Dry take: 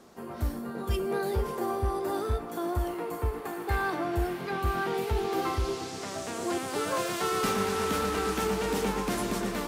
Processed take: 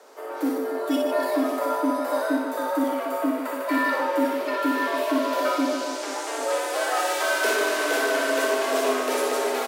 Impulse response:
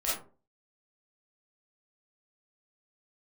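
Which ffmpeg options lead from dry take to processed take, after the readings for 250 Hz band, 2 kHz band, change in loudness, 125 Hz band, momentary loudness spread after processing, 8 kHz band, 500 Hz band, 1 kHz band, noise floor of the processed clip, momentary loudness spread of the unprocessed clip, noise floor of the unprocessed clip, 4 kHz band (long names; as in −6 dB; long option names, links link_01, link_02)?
+7.0 dB, +9.5 dB, +6.0 dB, below −25 dB, 5 LU, +6.0 dB, +7.0 dB, +5.5 dB, −32 dBFS, 6 LU, −39 dBFS, +6.0 dB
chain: -af "aecho=1:1:60|150|285|487.5|791.2:0.631|0.398|0.251|0.158|0.1,acontrast=82,afreqshift=210,volume=-3.5dB"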